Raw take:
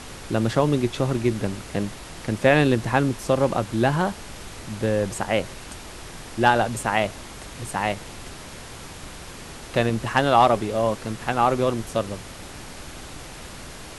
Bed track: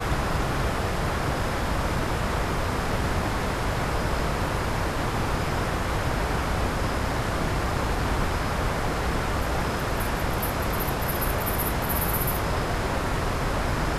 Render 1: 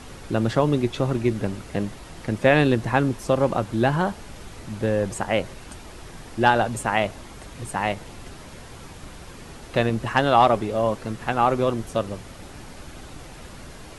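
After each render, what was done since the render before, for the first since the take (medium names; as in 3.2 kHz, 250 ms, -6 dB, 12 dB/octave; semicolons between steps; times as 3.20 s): noise reduction 6 dB, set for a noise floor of -40 dBFS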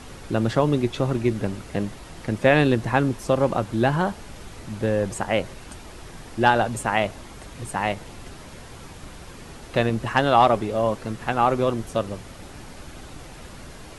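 no audible change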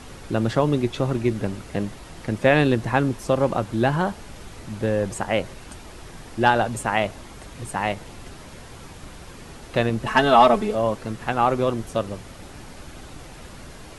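10.06–10.75 s: comb 4.6 ms, depth 93%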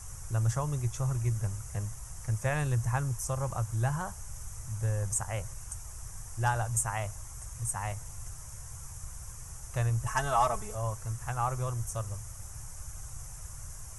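FFT filter 120 Hz 0 dB, 240 Hz -27 dB, 1.1 kHz -9 dB, 4.2 kHz -21 dB, 6 kHz +5 dB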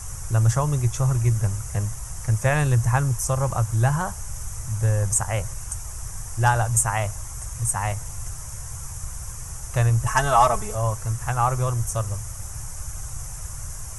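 trim +9.5 dB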